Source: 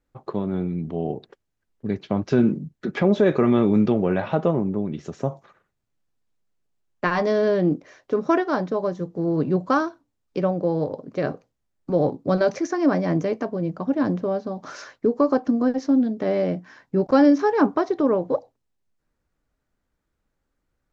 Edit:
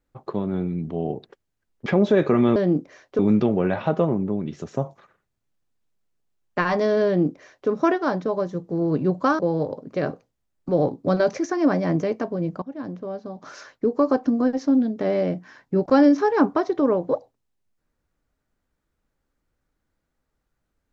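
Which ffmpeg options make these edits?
-filter_complex "[0:a]asplit=6[a][b][c][d][e][f];[a]atrim=end=1.862[g];[b]atrim=start=2.948:end=3.652[h];[c]atrim=start=7.518:end=8.152[i];[d]atrim=start=3.648:end=9.852[j];[e]atrim=start=10.598:end=13.83,asetpts=PTS-STARTPTS,afade=t=out:st=3.228:d=0.004:c=hsin:silence=0.177828[k];[f]atrim=start=13.83,asetpts=PTS-STARTPTS,afade=t=in:d=1.5:silence=0.177828[l];[g][h]acrossfade=d=0.004:c1=hsin:c2=hsin[m];[m][i]acrossfade=d=0.004:c1=hsin:c2=hsin[n];[n][j]acrossfade=d=0.004:c1=hsin:c2=hsin[o];[k][l]concat=n=2:v=0:a=1[p];[o][p]acrossfade=d=0.004:c1=hsin:c2=hsin"

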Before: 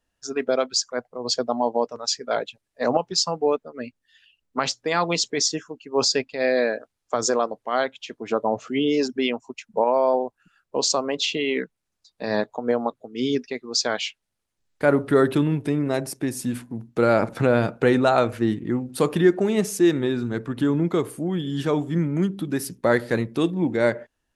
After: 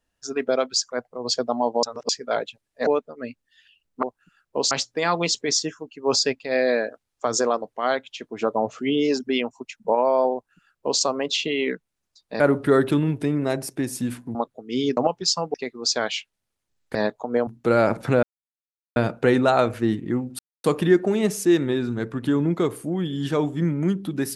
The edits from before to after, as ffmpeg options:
-filter_complex "[0:a]asplit=14[a][b][c][d][e][f][g][h][i][j][k][l][m][n];[a]atrim=end=1.832[o];[b]atrim=start=1.828:end=2.092,asetpts=PTS-STARTPTS,areverse[p];[c]atrim=start=2.088:end=2.872[q];[d]atrim=start=3.438:end=4.602[r];[e]atrim=start=10.218:end=10.902[s];[f]atrim=start=4.598:end=12.292[t];[g]atrim=start=14.838:end=16.792[u];[h]atrim=start=12.808:end=13.432[v];[i]atrim=start=2.868:end=3.442[w];[j]atrim=start=13.428:end=14.842[x];[k]atrim=start=12.288:end=12.812[y];[l]atrim=start=16.788:end=17.55,asetpts=PTS-STARTPTS,afade=t=out:st=0.758:d=0.004:c=hsin,apad=pad_dur=0.73[z];[m]atrim=start=17.55:end=18.98,asetpts=PTS-STARTPTS,afade=t=in:d=0.004:c=hsin,afade=t=out:st=1.426:d=0.004:c=hsin,apad=pad_dur=0.25[aa];[n]atrim=start=18.98,asetpts=PTS-STARTPTS,afade=t=in:d=0.004:c=hsin[ab];[o][p]acrossfade=d=0.004:c1=hsin:c2=hsin[ac];[ac][q]acrossfade=d=0.004:c1=hsin:c2=hsin[ad];[ad][r]acrossfade=d=0.004:c1=hsin:c2=hsin[ae];[ae][s]acrossfade=d=0.004:c1=hsin:c2=hsin[af];[af][t]acrossfade=d=0.004:c1=hsin:c2=hsin[ag];[ag][u]acrossfade=d=0.004:c1=hsin:c2=hsin[ah];[ah][v]acrossfade=d=0.004:c1=hsin:c2=hsin[ai];[ai][w]acrossfade=d=0.004:c1=hsin:c2=hsin[aj];[aj][x]acrossfade=d=0.004:c1=hsin:c2=hsin[ak];[ak][y]acrossfade=d=0.004:c1=hsin:c2=hsin[al];[z][aa][ab]concat=n=3:v=0:a=1[am];[al][am]acrossfade=d=0.004:c1=hsin:c2=hsin"

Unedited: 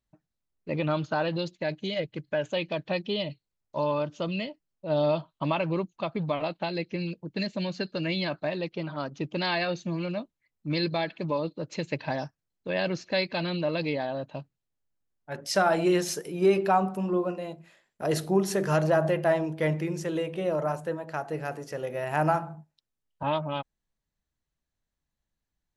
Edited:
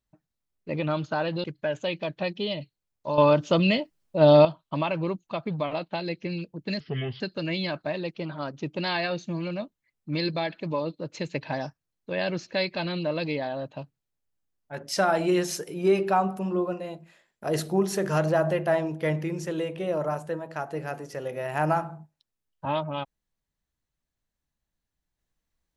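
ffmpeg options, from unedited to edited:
-filter_complex "[0:a]asplit=6[a][b][c][d][e][f];[a]atrim=end=1.442[g];[b]atrim=start=2.128:end=3.872[h];[c]atrim=start=3.868:end=5.142,asetpts=PTS-STARTPTS,volume=9.5dB[i];[d]atrim=start=5.138:end=7.494[j];[e]atrim=start=7.49:end=7.78,asetpts=PTS-STARTPTS,asetrate=31752,aresample=44100,atrim=end_sample=17762,asetpts=PTS-STARTPTS[k];[f]atrim=start=7.776[l];[g][h]acrossfade=d=0.004:c1=hsin:c2=hsin[m];[m][i]acrossfade=d=0.004:c1=hsin:c2=hsin[n];[n][j]acrossfade=d=0.004:c1=hsin:c2=hsin[o];[o][k]acrossfade=d=0.004:c1=hsin:c2=hsin[p];[p][l]acrossfade=d=0.004:c1=hsin:c2=hsin"

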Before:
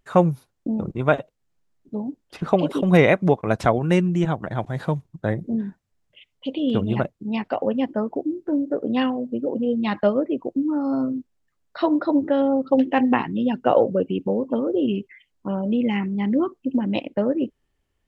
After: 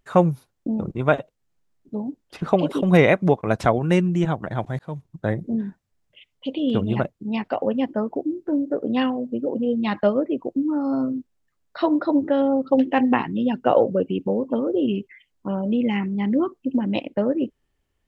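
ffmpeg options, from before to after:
-filter_complex "[0:a]asplit=2[a][b];[a]atrim=end=4.79,asetpts=PTS-STARTPTS,afade=t=out:st=4.786:d=0.004:c=hsin[c];[b]atrim=start=4.79,asetpts=PTS-STARTPTS,afade=t=in:d=0.33[d];[c][d]concat=n=2:v=0:a=1"

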